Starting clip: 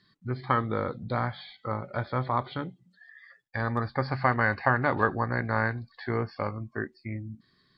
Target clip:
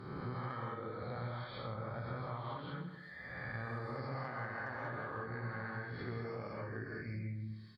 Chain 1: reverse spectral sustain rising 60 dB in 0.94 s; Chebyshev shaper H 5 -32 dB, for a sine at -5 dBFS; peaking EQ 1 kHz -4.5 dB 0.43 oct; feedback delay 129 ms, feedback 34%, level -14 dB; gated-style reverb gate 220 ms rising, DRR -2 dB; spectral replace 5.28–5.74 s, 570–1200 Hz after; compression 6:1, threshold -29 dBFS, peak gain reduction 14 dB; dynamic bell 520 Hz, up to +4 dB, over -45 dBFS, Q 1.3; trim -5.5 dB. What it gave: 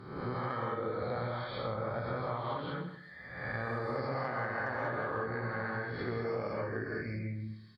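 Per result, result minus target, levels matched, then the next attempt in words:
compression: peak gain reduction -6 dB; 125 Hz band -3.5 dB
reverse spectral sustain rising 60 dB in 0.94 s; Chebyshev shaper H 5 -32 dB, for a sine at -5 dBFS; peaking EQ 1 kHz -4.5 dB 0.43 oct; feedback delay 129 ms, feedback 34%, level -14 dB; gated-style reverb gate 220 ms rising, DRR -2 dB; spectral replace 5.28–5.74 s, 570–1200 Hz after; compression 6:1, threshold -36 dBFS, peak gain reduction 20 dB; dynamic bell 520 Hz, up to +4 dB, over -45 dBFS, Q 1.3; trim -5.5 dB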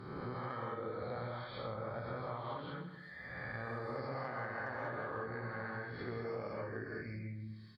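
125 Hz band -3.5 dB
reverse spectral sustain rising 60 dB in 0.94 s; Chebyshev shaper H 5 -32 dB, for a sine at -5 dBFS; peaking EQ 1 kHz -4.5 dB 0.43 oct; feedback delay 129 ms, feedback 34%, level -14 dB; gated-style reverb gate 220 ms rising, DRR -2 dB; spectral replace 5.28–5.74 s, 570–1200 Hz after; compression 6:1, threshold -36 dBFS, peak gain reduction 20 dB; dynamic bell 130 Hz, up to +4 dB, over -45 dBFS, Q 1.3; trim -5.5 dB

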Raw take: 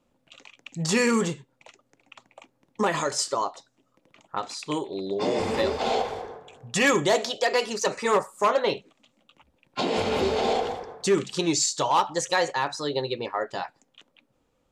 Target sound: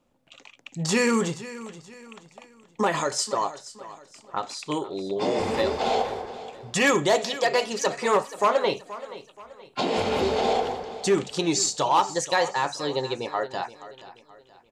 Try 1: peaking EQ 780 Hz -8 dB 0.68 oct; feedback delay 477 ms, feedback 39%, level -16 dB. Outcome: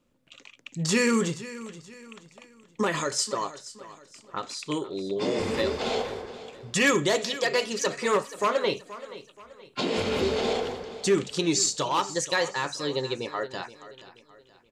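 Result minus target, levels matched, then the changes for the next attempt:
1 kHz band -4.0 dB
change: peaking EQ 780 Hz +2 dB 0.68 oct

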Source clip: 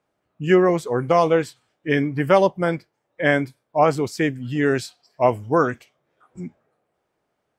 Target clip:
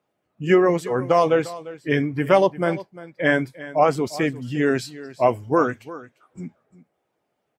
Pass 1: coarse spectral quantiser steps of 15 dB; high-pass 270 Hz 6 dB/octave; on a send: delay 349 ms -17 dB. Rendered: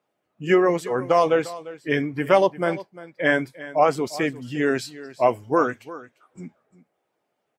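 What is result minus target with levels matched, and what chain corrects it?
125 Hz band -4.0 dB
coarse spectral quantiser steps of 15 dB; high-pass 87 Hz 6 dB/octave; on a send: delay 349 ms -17 dB

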